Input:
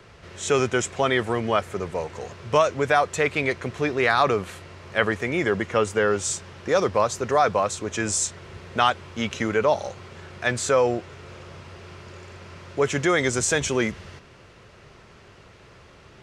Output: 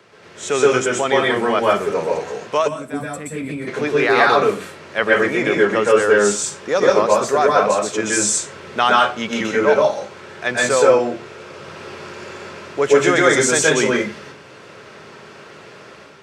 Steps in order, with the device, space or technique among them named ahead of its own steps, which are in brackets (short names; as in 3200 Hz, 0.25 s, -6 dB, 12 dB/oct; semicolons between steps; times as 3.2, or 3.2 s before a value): far laptop microphone (reverb RT60 0.35 s, pre-delay 0.119 s, DRR -3.5 dB; HPF 200 Hz 12 dB/oct; AGC gain up to 6 dB); 2.44–2.94 HPF 230 Hz 6 dB/oct; 2.68–3.67 spectral gain 310–7400 Hz -15 dB